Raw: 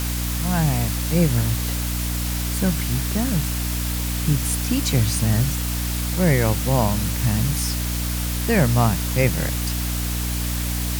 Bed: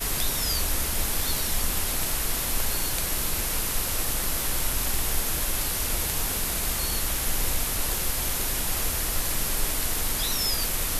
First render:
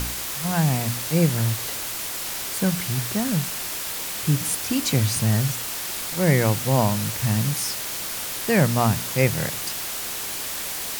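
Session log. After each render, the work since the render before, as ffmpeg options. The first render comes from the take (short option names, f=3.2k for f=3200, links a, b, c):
-af "bandreject=f=60:t=h:w=4,bandreject=f=120:t=h:w=4,bandreject=f=180:t=h:w=4,bandreject=f=240:t=h:w=4,bandreject=f=300:t=h:w=4"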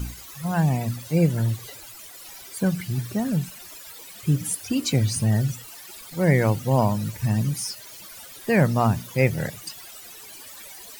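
-af "afftdn=nr=17:nf=-30"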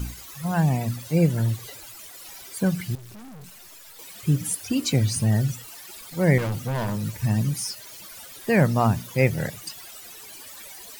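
-filter_complex "[0:a]asettb=1/sr,asplit=3[a][b][c];[a]atrim=end=2.954[d];[b]atrim=start=2.95:end=3.99,asetpts=PTS-STARTPTS,afade=t=in:d=0.004:c=qsin,afade=t=out:st=1.036:d=0.004:c=qsin,aeval=exprs='(tanh(126*val(0)+0.55)-tanh(0.55))/126':c=same[e];[c]atrim=start=3.986[f];[d][e]acrossfade=d=0.004:c1=hsin:c2=qsin[g];[g][f]acrossfade=d=0.004:c1=qsin:c2=hsin,asettb=1/sr,asplit=3[h][i][j];[h]atrim=end=6.384[k];[i]atrim=start=6.38:end=7.04,asetpts=PTS-STARTPTS,afade=t=in:d=0.004:c=qsin,afade=t=out:st=0.656:d=0.004:c=qsin,volume=24dB,asoftclip=hard,volume=-24dB[l];[j]atrim=start=7.036[m];[k][l]acrossfade=d=0.004:c1=hsin:c2=qsin[n];[n][m]acrossfade=d=0.004:c1=qsin:c2=hsin"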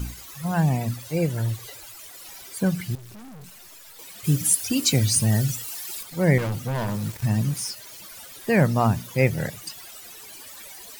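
-filter_complex "[0:a]asettb=1/sr,asplit=3[a][b][c];[a]atrim=end=0.944[d];[b]atrim=start=0.94:end=2.06,asetpts=PTS-STARTPTS,afade=t=in:d=0.004:c=qsin,afade=t=out:st=1.116:d=0.004:c=qsin,equalizer=f=200:w=1.5:g=-8[e];[c]atrim=start=2.056[f];[d][e]acrossfade=d=0.004:c1=hsin:c2=qsin[g];[g][f]acrossfade=d=0.004:c1=qsin:c2=hsin,asettb=1/sr,asplit=3[h][i][j];[h]atrim=end=4.244[k];[i]atrim=start=4.24:end=6.03,asetpts=PTS-STARTPTS,afade=t=in:d=0.004:c=qsin,afade=t=out:st=1.786:d=0.004:c=qsin,highshelf=f=3.3k:g=9[l];[j]atrim=start=6.026[m];[k][l]acrossfade=d=0.004:c1=hsin:c2=qsin[n];[n][m]acrossfade=d=0.004:c1=qsin:c2=hsin,asettb=1/sr,asplit=3[o][p][q];[o]atrim=end=6.904[r];[p]atrim=start=6.9:end=7.71,asetpts=PTS-STARTPTS,afade=t=in:d=0.004:c=qsin,afade=t=out:st=0.806:d=0.004:c=qsin,aeval=exprs='val(0)*gte(abs(val(0)),0.0158)':c=same[s];[q]atrim=start=7.706[t];[r][s]acrossfade=d=0.004:c1=hsin:c2=qsin[u];[u][t]acrossfade=d=0.004:c1=qsin:c2=hsin"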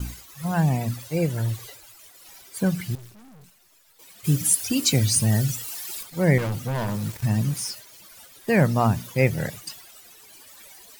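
-af "agate=range=-33dB:threshold=-36dB:ratio=3:detection=peak"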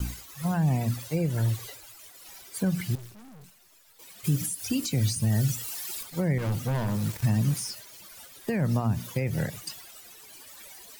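-filter_complex "[0:a]alimiter=limit=-15.5dB:level=0:latency=1:release=103,acrossover=split=280[a][b];[b]acompressor=threshold=-32dB:ratio=3[c];[a][c]amix=inputs=2:normalize=0"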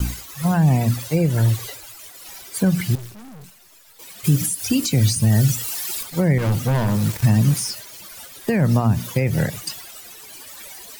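-af "volume=8.5dB"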